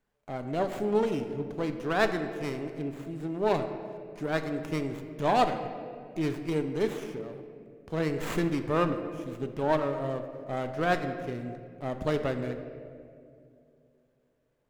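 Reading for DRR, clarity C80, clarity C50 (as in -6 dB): 7.0 dB, 9.5 dB, 8.5 dB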